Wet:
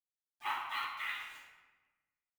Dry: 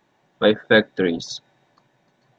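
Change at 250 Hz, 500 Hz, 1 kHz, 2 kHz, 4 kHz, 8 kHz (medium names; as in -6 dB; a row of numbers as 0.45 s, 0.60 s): under -40 dB, under -40 dB, -6.5 dB, -17.0 dB, -17.5 dB, no reading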